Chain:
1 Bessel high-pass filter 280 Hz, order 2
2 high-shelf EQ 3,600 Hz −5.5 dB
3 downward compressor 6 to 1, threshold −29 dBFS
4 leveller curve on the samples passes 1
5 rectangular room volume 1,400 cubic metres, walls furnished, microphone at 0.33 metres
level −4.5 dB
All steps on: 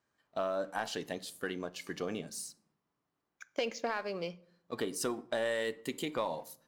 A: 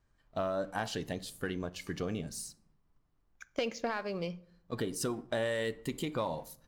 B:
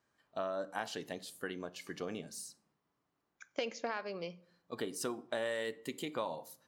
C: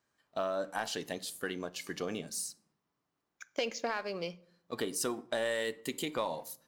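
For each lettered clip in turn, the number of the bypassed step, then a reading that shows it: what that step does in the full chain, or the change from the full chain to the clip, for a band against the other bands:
1, 125 Hz band +8.5 dB
4, change in crest factor +3.5 dB
2, 8 kHz band +4.0 dB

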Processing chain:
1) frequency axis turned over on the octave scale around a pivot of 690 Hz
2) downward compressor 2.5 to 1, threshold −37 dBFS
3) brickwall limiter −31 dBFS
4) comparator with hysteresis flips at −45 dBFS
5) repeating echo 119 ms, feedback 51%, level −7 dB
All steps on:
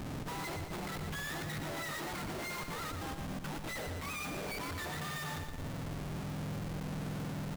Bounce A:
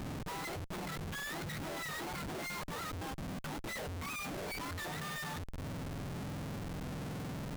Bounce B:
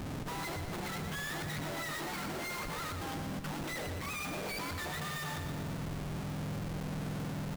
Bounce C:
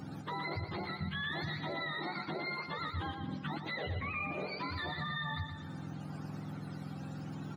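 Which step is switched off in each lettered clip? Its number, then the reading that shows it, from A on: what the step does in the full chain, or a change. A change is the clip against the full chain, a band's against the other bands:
5, echo-to-direct ratio −5.5 dB to none audible
2, average gain reduction 7.0 dB
4, change in crest factor +4.5 dB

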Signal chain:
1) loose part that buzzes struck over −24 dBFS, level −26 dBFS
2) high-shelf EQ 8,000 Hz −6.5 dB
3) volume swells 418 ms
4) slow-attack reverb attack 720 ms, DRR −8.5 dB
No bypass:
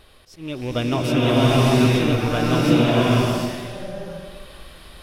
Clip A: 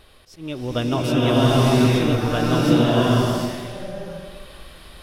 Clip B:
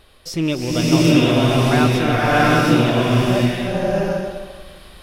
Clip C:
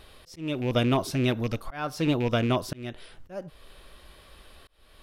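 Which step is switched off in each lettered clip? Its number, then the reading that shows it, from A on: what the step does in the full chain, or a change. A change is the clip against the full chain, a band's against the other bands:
1, 2 kHz band −2.0 dB
3, 2 kHz band +3.5 dB
4, change in momentary loudness spread −1 LU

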